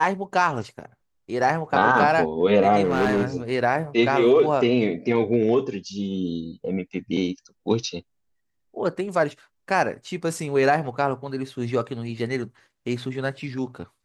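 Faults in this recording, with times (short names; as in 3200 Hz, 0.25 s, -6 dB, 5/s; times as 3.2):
2.83–3.37 clipped -16.5 dBFS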